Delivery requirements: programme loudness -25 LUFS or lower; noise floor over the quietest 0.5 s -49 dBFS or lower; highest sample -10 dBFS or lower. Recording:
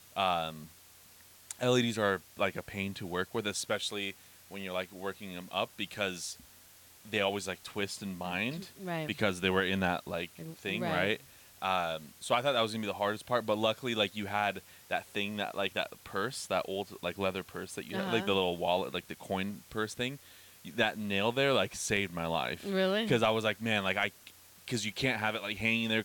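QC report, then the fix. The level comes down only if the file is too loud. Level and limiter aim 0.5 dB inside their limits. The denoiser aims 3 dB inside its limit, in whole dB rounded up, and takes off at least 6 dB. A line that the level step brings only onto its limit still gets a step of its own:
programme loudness -33.0 LUFS: OK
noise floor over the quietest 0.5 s -57 dBFS: OK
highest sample -15.0 dBFS: OK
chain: none

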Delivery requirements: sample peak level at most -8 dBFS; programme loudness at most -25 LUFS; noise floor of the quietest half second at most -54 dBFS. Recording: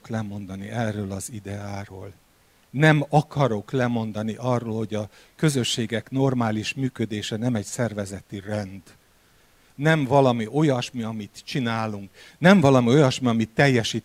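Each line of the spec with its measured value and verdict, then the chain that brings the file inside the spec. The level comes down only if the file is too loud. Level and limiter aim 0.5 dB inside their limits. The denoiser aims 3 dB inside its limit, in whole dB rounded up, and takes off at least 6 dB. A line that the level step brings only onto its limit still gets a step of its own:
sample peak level -3.5 dBFS: fail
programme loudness -23.0 LUFS: fail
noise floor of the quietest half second -59 dBFS: OK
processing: gain -2.5 dB; limiter -8.5 dBFS

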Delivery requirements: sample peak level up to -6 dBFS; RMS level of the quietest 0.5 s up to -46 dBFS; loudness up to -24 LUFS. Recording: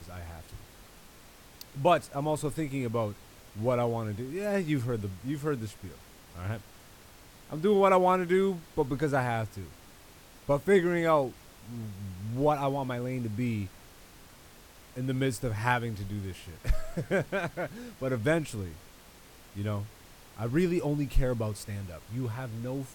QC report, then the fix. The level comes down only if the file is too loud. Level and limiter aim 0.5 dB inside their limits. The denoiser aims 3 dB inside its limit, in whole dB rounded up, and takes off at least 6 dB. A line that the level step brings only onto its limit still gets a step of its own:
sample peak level -10.5 dBFS: OK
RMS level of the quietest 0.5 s -53 dBFS: OK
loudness -30.5 LUFS: OK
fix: none

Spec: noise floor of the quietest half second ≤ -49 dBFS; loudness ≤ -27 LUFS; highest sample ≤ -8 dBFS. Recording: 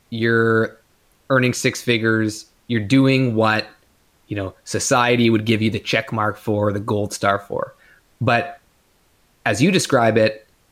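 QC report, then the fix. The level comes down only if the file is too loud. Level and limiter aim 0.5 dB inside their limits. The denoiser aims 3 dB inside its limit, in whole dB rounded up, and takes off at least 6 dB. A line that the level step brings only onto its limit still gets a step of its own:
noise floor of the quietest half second -59 dBFS: OK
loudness -19.0 LUFS: fail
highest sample -4.0 dBFS: fail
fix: gain -8.5 dB

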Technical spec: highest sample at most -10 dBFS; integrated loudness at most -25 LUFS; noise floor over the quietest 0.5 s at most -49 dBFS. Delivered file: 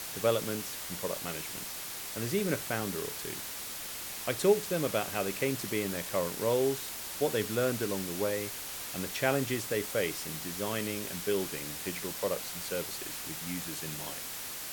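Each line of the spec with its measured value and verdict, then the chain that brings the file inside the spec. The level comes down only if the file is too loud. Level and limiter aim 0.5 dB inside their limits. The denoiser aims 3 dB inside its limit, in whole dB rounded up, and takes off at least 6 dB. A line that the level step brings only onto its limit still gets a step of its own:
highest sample -12.0 dBFS: OK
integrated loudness -33.0 LUFS: OK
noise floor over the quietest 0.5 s -40 dBFS: fail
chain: denoiser 12 dB, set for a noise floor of -40 dBFS

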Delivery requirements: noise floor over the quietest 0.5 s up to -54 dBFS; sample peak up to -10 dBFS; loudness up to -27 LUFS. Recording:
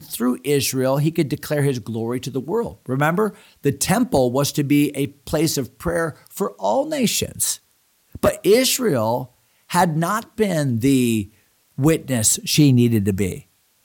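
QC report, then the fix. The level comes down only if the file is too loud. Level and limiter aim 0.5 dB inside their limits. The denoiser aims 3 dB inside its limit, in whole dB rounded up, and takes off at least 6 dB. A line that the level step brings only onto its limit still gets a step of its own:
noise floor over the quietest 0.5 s -62 dBFS: OK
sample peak -4.5 dBFS: fail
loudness -20.0 LUFS: fail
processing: gain -7.5 dB

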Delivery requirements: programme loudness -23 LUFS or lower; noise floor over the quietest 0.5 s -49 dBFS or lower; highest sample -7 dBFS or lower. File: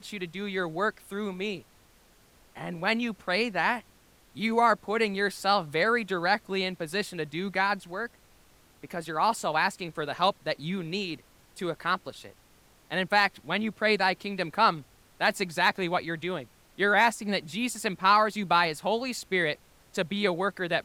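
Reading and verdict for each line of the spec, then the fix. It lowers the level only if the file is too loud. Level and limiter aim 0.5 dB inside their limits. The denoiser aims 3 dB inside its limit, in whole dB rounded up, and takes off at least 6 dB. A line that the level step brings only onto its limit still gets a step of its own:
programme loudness -28.0 LUFS: OK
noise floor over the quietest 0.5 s -60 dBFS: OK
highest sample -9.5 dBFS: OK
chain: none

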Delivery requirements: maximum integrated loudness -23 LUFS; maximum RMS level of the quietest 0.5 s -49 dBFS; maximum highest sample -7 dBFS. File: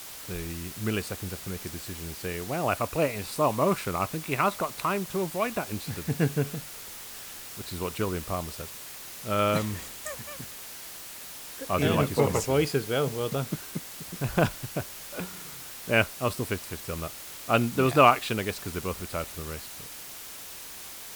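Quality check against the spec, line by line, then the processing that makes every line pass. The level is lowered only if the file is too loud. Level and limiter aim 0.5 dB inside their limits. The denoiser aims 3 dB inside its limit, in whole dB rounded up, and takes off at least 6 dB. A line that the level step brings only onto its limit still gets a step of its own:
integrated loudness -29.5 LUFS: OK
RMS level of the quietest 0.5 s -42 dBFS: fail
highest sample -6.0 dBFS: fail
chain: denoiser 10 dB, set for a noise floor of -42 dBFS; limiter -7.5 dBFS

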